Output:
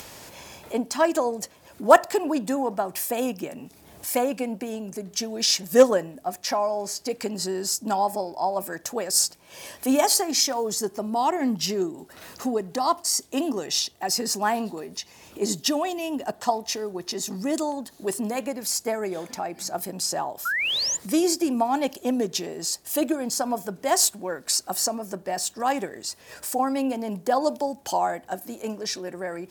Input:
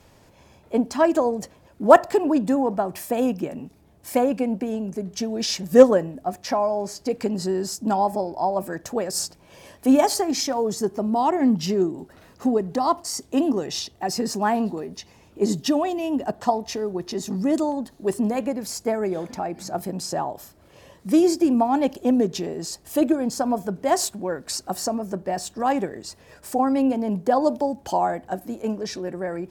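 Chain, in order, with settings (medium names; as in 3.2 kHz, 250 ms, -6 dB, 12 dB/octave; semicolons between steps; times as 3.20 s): tilt EQ +2.5 dB/octave; upward compressor, threshold -31 dBFS; painted sound rise, 20.45–20.97 s, 1.3–7.4 kHz -24 dBFS; trim -1 dB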